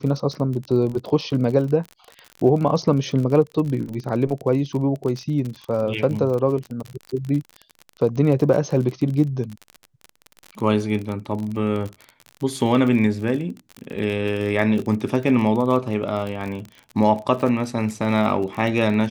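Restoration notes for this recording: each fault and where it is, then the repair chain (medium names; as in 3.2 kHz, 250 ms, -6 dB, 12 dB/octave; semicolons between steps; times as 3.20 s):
crackle 37 per s -27 dBFS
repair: de-click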